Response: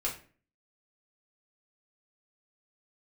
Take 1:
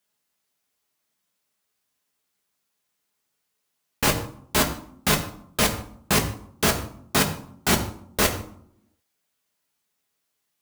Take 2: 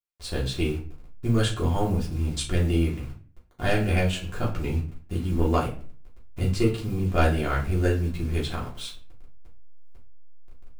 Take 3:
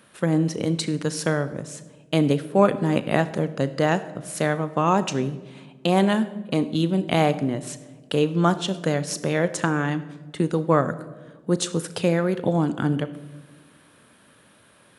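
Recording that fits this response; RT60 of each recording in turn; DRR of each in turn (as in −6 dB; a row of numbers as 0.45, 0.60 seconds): 2; 0.65 s, 0.40 s, non-exponential decay; 1.5, −5.5, 12.5 decibels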